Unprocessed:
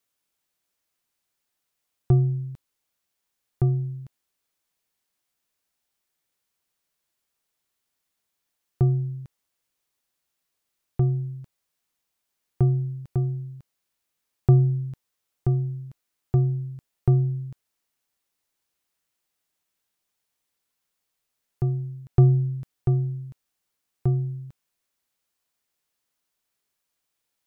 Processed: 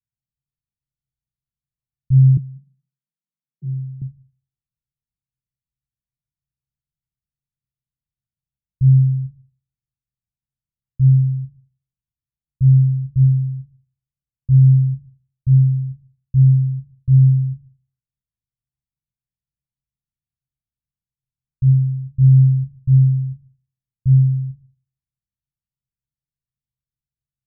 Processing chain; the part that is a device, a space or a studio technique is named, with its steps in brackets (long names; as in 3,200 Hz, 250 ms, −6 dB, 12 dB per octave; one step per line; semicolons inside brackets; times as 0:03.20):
club heard from the street (brickwall limiter −18 dBFS, peak gain reduction 11.5 dB; low-pass filter 150 Hz 24 dB per octave; convolution reverb RT60 0.55 s, pre-delay 3 ms, DRR −2 dB)
0:02.37–0:04.02: Butterworth high-pass 150 Hz 72 dB per octave
level +4 dB